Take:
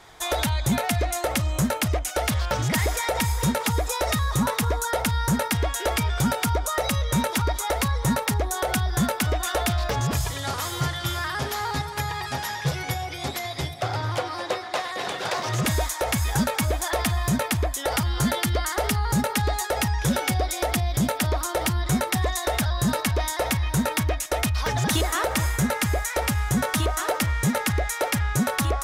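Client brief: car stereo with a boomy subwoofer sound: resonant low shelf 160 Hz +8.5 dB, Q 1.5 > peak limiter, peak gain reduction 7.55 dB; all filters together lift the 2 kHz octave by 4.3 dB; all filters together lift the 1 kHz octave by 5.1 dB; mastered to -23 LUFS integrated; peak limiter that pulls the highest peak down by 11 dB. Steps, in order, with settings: peaking EQ 1 kHz +6 dB; peaking EQ 2 kHz +3.5 dB; peak limiter -21 dBFS; resonant low shelf 160 Hz +8.5 dB, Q 1.5; trim +4.5 dB; peak limiter -14.5 dBFS

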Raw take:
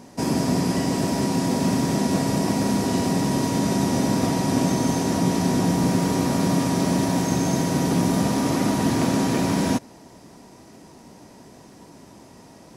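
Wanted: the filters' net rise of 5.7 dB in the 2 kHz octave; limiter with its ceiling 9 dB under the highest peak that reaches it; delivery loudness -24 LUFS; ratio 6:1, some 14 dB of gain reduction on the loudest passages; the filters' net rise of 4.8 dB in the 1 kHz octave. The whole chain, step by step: peaking EQ 1 kHz +4.5 dB; peaking EQ 2 kHz +5.5 dB; compression 6:1, threshold -32 dBFS; trim +15 dB; peak limiter -14.5 dBFS

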